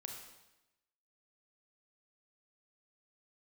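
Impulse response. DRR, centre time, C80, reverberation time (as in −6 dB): 1.5 dB, 42 ms, 6.0 dB, 0.95 s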